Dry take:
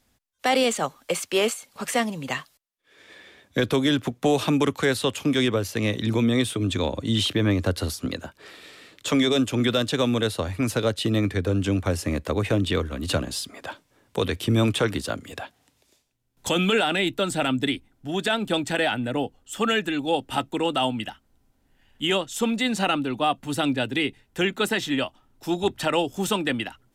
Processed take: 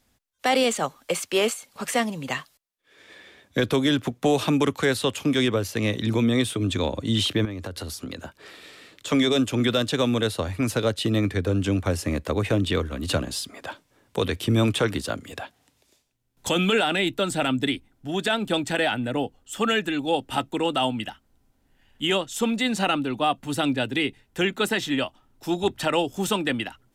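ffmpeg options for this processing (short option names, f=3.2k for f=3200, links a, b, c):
-filter_complex "[0:a]asettb=1/sr,asplit=3[a][b][c];[a]atrim=end=7.454[d];[b]atrim=start=7.45:end=9.11,asetpts=PTS-STARTPTS,afade=t=in:d=0.004:c=qsin,afade=t=out:st=1.656:d=0.004:c=qsin,acompressor=threshold=-29dB:ratio=12:attack=3.2:release=140:knee=1:detection=peak[e];[c]atrim=start=9.106[f];[d][e]acrossfade=d=0.004:c1=hsin:c2=qsin[g];[g][f]acrossfade=d=0.004:c1=qsin:c2=hsin"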